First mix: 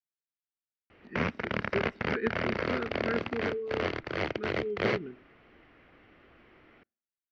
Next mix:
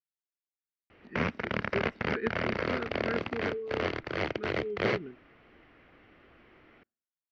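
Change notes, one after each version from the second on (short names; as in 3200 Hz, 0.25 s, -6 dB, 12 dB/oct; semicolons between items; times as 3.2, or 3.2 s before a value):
speech: send -9.0 dB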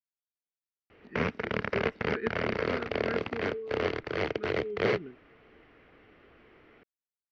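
background: add bell 440 Hz +7 dB 0.23 oct; reverb: off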